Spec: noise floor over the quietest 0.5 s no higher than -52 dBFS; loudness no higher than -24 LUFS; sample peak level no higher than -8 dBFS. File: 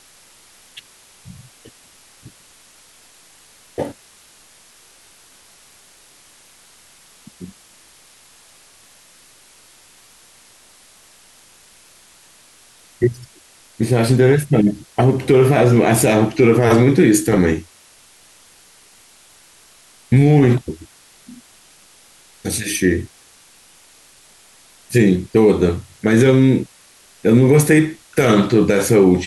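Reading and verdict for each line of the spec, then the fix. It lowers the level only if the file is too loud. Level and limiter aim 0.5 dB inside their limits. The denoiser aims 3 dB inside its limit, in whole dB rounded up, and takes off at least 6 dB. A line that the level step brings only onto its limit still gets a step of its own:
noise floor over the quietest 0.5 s -49 dBFS: fail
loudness -15.0 LUFS: fail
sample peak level -3.0 dBFS: fail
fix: gain -9.5 dB

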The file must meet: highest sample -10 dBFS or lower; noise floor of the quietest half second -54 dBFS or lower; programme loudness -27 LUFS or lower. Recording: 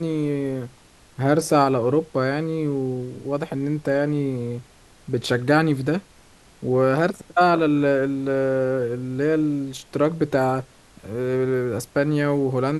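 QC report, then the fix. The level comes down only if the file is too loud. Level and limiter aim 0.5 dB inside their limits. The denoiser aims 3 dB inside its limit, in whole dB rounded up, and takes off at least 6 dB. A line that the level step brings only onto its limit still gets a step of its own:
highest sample -4.0 dBFS: fail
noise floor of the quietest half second -51 dBFS: fail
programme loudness -22.5 LUFS: fail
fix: gain -5 dB; limiter -10.5 dBFS

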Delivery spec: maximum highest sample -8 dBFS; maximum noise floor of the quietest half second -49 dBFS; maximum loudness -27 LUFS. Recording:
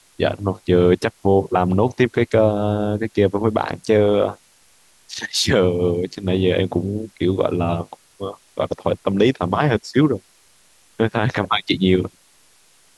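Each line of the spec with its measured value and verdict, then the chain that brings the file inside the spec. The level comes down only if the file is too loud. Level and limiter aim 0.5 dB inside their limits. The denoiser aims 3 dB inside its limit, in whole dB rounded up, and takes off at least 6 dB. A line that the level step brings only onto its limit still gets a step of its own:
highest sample -3.5 dBFS: fail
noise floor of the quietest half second -54 dBFS: OK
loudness -19.5 LUFS: fail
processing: gain -8 dB

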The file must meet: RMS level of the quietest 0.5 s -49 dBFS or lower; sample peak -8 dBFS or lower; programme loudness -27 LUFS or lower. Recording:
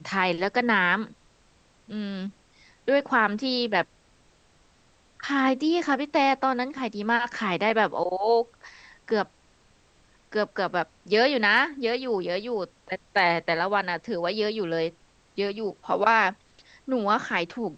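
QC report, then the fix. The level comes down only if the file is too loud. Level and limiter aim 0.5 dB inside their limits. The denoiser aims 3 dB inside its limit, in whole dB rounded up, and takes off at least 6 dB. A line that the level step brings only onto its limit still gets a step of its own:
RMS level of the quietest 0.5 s -61 dBFS: OK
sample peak -7.0 dBFS: fail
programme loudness -25.5 LUFS: fail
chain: gain -2 dB

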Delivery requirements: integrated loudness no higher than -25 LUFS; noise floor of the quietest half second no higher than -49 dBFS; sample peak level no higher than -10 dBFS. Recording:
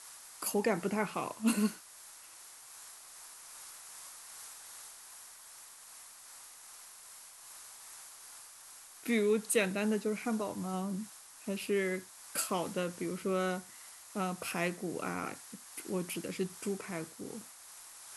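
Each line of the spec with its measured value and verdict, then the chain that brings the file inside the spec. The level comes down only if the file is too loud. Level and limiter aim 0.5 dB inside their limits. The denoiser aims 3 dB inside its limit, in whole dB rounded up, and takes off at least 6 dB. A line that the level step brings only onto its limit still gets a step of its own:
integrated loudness -35.5 LUFS: OK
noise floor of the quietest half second -53 dBFS: OK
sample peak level -16.5 dBFS: OK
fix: none

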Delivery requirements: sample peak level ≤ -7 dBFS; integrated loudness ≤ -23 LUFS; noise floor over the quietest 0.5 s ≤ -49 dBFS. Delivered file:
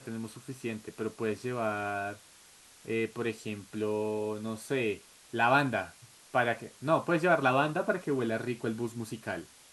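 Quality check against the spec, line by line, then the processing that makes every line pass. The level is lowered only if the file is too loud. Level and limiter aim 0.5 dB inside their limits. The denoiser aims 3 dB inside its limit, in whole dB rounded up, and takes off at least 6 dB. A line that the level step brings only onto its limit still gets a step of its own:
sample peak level -11.5 dBFS: OK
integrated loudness -32.0 LUFS: OK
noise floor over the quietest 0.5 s -57 dBFS: OK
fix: none

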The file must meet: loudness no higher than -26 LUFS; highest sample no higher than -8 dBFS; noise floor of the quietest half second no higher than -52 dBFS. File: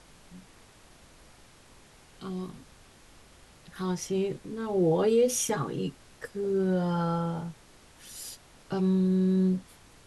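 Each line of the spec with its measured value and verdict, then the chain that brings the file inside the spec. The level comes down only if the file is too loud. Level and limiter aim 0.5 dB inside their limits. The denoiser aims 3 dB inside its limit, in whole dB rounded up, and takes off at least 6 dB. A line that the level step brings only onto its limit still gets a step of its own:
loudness -28.5 LUFS: OK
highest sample -15.0 dBFS: OK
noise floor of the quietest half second -55 dBFS: OK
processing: none

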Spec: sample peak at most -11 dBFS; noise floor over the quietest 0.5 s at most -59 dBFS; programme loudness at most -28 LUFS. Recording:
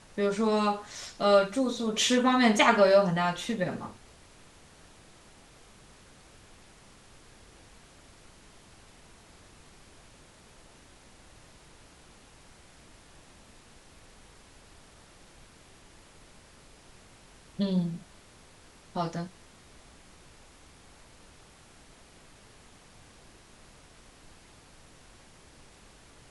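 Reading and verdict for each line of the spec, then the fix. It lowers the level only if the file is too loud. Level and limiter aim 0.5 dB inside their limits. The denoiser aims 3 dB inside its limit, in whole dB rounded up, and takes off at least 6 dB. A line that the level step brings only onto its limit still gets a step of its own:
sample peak -8.0 dBFS: fail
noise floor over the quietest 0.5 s -55 dBFS: fail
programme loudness -26.0 LUFS: fail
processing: denoiser 6 dB, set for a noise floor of -55 dBFS; gain -2.5 dB; limiter -11.5 dBFS

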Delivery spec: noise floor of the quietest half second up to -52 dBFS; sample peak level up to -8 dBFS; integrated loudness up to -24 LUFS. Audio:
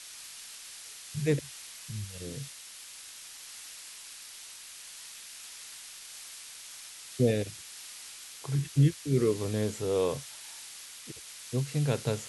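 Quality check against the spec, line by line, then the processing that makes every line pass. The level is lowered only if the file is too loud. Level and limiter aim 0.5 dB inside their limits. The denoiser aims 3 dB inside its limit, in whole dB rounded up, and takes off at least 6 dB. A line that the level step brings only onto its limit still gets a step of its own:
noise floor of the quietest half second -47 dBFS: fail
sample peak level -13.0 dBFS: OK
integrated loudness -34.0 LUFS: OK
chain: denoiser 8 dB, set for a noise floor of -47 dBFS

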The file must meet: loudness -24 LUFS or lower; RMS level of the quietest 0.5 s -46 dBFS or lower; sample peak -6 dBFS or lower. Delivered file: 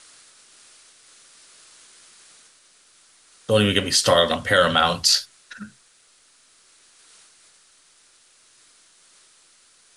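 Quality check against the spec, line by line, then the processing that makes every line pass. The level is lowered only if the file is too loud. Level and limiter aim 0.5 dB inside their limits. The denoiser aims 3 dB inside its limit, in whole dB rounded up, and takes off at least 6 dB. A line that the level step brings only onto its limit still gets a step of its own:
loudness -18.5 LUFS: fail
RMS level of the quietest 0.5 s -57 dBFS: OK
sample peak -4.5 dBFS: fail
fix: gain -6 dB

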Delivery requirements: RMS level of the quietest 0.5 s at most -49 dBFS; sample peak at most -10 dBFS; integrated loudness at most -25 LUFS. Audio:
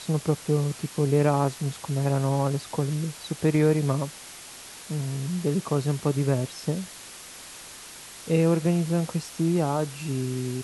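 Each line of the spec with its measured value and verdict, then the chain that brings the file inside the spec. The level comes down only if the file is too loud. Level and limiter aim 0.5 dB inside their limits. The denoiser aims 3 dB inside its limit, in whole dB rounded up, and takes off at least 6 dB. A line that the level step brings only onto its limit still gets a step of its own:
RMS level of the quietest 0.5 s -43 dBFS: fail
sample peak -9.0 dBFS: fail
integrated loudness -26.0 LUFS: OK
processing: denoiser 9 dB, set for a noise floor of -43 dBFS; limiter -10.5 dBFS

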